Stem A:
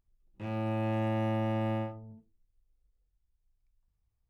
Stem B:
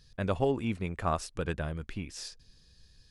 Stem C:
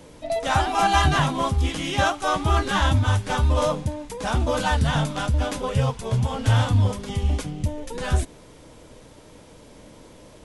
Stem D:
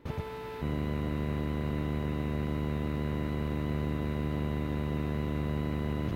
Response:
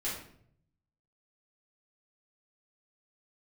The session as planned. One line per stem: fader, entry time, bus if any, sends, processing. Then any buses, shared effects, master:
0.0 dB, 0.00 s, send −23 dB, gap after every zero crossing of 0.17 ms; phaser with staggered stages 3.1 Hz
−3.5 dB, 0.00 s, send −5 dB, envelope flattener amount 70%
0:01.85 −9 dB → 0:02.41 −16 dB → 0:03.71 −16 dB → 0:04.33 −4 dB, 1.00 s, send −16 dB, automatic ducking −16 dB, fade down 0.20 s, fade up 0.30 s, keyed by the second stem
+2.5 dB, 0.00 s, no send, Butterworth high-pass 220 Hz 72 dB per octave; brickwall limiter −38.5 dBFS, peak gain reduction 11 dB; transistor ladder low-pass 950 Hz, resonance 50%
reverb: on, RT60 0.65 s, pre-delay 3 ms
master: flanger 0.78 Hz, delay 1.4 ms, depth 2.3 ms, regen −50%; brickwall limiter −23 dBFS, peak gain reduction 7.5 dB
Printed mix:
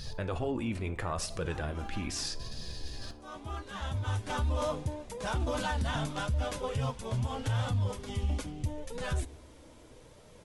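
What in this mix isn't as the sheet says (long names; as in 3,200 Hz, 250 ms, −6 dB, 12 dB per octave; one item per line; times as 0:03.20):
stem A: muted
reverb return −8.5 dB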